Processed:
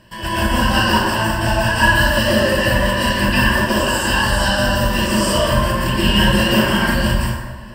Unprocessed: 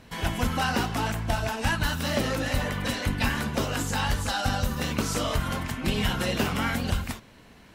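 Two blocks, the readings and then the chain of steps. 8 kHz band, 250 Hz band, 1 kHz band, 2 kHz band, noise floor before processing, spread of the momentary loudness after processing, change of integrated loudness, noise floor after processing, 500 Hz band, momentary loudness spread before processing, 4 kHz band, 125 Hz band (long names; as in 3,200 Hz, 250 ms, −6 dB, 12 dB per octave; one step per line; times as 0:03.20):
+9.0 dB, +11.5 dB, +11.5 dB, +13.5 dB, −52 dBFS, 4 LU, +11.5 dB, −30 dBFS, +13.0 dB, 3 LU, +12.5 dB, +9.0 dB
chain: EQ curve with evenly spaced ripples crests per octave 1.3, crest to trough 14 dB
dense smooth reverb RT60 1.4 s, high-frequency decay 0.55×, pre-delay 105 ms, DRR −9 dB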